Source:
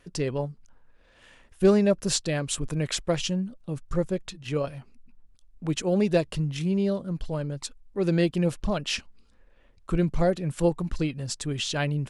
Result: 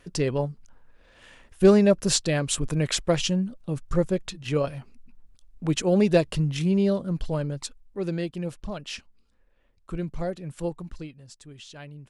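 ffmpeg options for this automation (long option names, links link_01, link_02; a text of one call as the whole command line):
ffmpeg -i in.wav -af "volume=3dB,afade=type=out:start_time=7.32:duration=0.89:silence=0.316228,afade=type=out:start_time=10.76:duration=0.46:silence=0.375837" out.wav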